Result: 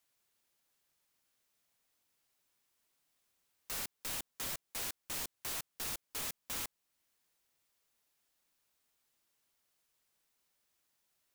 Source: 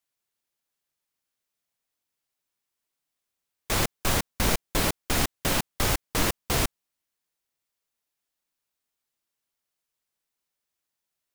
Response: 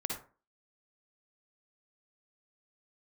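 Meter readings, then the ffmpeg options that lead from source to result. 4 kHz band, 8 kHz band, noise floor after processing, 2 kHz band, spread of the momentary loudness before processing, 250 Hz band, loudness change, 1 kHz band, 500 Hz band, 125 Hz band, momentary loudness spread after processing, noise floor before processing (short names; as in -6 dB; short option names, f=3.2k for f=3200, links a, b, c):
-14.0 dB, -11.0 dB, -84 dBFS, -16.5 dB, 1 LU, -23.5 dB, -13.0 dB, -18.5 dB, -21.5 dB, -26.0 dB, 1 LU, -85 dBFS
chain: -af "asoftclip=type=tanh:threshold=-18.5dB,alimiter=level_in=1.5dB:limit=-24dB:level=0:latency=1:release=444,volume=-1.5dB,aeval=exprs='0.0112*(abs(mod(val(0)/0.0112+3,4)-2)-1)':c=same,volume=5dB"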